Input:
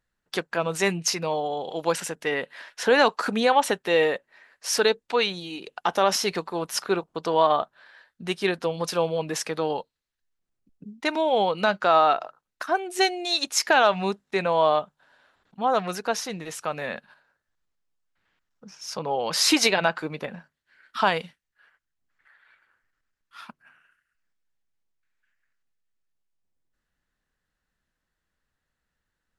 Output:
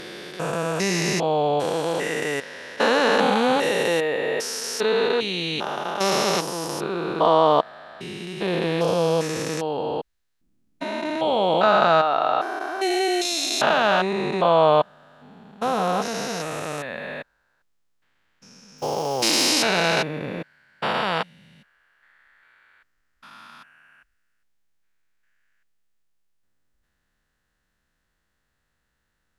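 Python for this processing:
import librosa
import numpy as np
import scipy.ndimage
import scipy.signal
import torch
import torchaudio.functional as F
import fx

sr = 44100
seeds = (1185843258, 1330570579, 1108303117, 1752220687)

y = fx.spec_steps(x, sr, hold_ms=400)
y = fx.quant_companded(y, sr, bits=6, at=(18.78, 19.49))
y = y * 10.0 ** (8.0 / 20.0)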